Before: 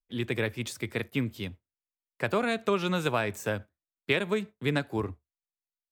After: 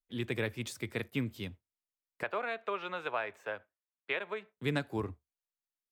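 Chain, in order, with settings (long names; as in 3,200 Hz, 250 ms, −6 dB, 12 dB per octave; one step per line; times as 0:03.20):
0:02.23–0:04.57: three-way crossover with the lows and the highs turned down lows −21 dB, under 450 Hz, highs −22 dB, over 3,200 Hz
level −4.5 dB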